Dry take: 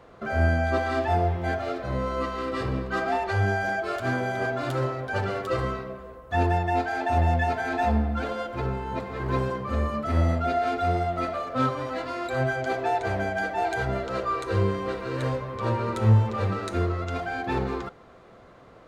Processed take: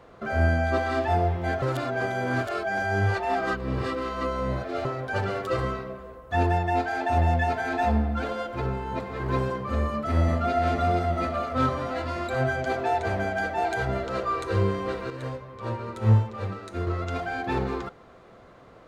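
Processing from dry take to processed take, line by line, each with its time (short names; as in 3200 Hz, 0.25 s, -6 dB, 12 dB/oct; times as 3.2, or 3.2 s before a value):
1.62–4.85 reverse
9.8–10.58 echo throw 0.47 s, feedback 75%, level -7 dB
15.1–16.87 upward expander, over -31 dBFS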